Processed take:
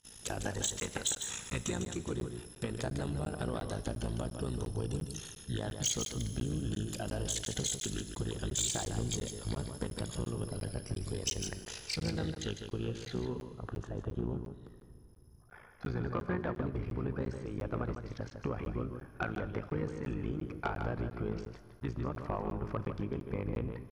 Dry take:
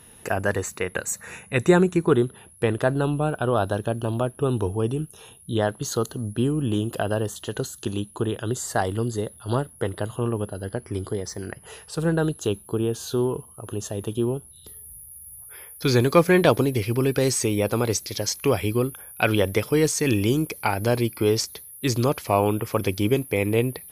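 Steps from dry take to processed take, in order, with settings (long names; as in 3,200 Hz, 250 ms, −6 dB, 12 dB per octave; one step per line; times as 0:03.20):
noise gate with hold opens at −39 dBFS
bass and treble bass +6 dB, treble +14 dB
downward compressor 16 to 1, threshold −22 dBFS, peak gain reduction 14 dB
low-pass filter sweep 6,700 Hz → 1,400 Hz, 0:11.40–0:13.96
amplitude modulation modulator 56 Hz, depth 80%
pitch-shifted copies added −12 semitones −6 dB
soft clipping −17 dBFS, distortion −18 dB
single-tap delay 152 ms −7.5 dB
four-comb reverb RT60 2.8 s, combs from 30 ms, DRR 14 dB
regular buffer underruns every 0.35 s, samples 512, zero, from 0:00.80
level −6.5 dB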